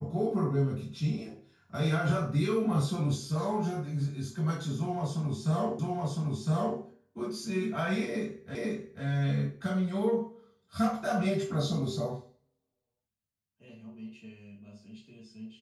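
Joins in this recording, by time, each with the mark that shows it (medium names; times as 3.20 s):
5.79 s: repeat of the last 1.01 s
8.55 s: repeat of the last 0.49 s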